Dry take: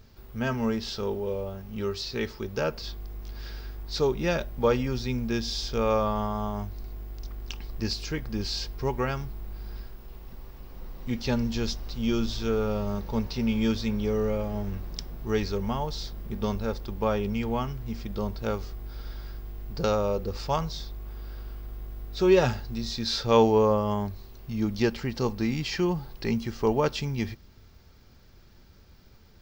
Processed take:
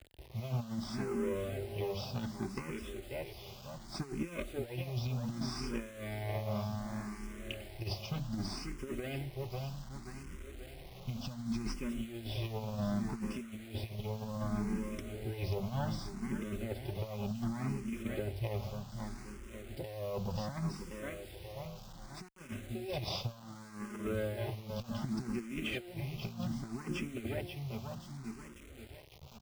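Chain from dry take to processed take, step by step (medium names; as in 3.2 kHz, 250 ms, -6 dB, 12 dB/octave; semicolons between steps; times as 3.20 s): comb filter that takes the minimum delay 0.37 ms; low-pass 4 kHz 12 dB/octave; hum notches 50/100/150/200/250/300 Hz; comb of notches 460 Hz; feedback delay 535 ms, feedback 50%, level -10 dB; compressor with a negative ratio -32 dBFS, ratio -0.5; bit crusher 8-bit; peaking EQ 68 Hz +3.5 dB 2.3 oct; band-stop 1.7 kHz, Q 15; barber-pole phaser +0.66 Hz; trim -3 dB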